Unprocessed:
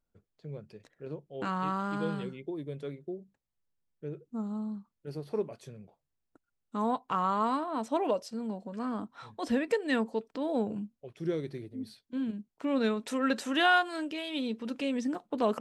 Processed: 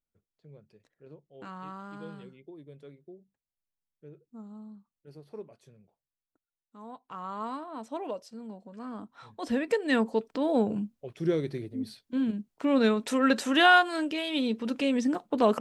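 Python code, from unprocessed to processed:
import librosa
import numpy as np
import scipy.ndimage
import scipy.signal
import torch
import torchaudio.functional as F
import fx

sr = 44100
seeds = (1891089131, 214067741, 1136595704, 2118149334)

y = fx.gain(x, sr, db=fx.line((5.75, -10.0), (6.77, -17.0), (7.44, -6.5), (8.77, -6.5), (10.12, 5.0)))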